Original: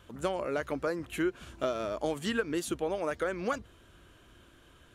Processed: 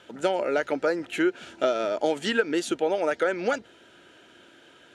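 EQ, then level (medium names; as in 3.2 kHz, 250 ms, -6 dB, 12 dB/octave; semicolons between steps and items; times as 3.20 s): band-pass 280–6700 Hz; Butterworth band-stop 1.1 kHz, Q 4.5; +8.0 dB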